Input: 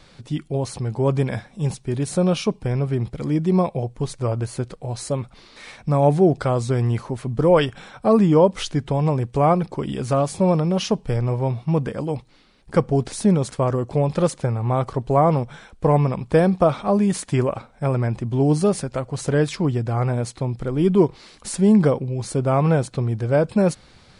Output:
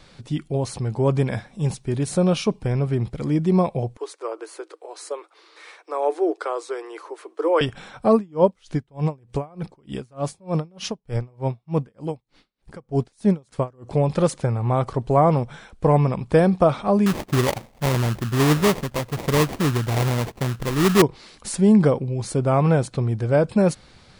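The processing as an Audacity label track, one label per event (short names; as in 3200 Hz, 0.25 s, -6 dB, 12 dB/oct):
3.970000	7.610000	rippled Chebyshev high-pass 310 Hz, ripple 6 dB
8.140000	13.910000	dB-linear tremolo 3.3 Hz, depth 33 dB
17.060000	21.020000	sample-rate reducer 1500 Hz, jitter 20%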